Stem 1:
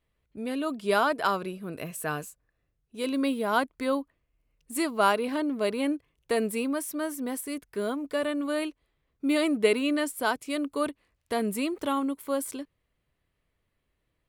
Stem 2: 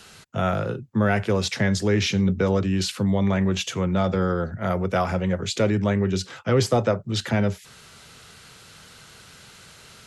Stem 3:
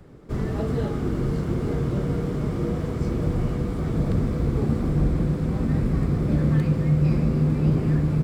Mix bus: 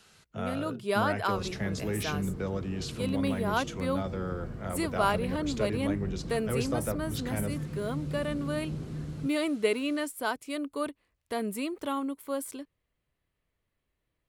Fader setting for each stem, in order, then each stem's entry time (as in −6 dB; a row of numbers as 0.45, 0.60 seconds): −4.0, −12.0, −16.0 decibels; 0.00, 0.00, 1.05 seconds